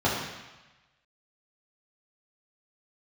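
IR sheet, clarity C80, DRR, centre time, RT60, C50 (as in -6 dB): 4.0 dB, -7.5 dB, 62 ms, 1.1 s, 2.0 dB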